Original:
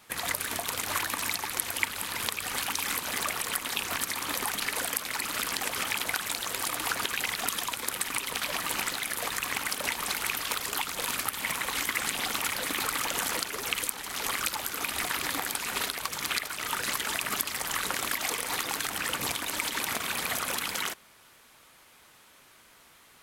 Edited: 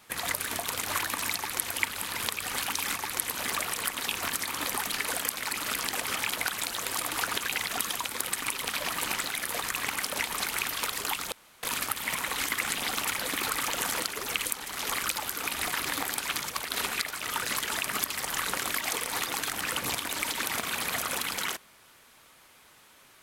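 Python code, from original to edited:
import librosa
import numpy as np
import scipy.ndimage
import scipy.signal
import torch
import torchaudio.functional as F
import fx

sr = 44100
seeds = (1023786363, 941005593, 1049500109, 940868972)

y = fx.edit(x, sr, fx.duplicate(start_s=1.36, length_s=0.32, to_s=2.96),
    fx.insert_room_tone(at_s=11.0, length_s=0.31),
    fx.reverse_span(start_s=15.65, length_s=0.69), tone=tone)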